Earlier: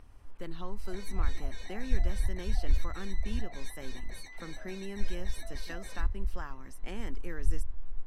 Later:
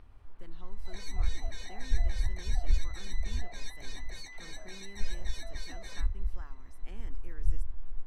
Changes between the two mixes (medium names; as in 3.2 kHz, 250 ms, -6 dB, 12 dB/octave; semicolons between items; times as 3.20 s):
speech -11.0 dB; second sound: add peaking EQ 6 kHz +5.5 dB 1.6 oct; master: add peaking EQ 530 Hz -2.5 dB 0.25 oct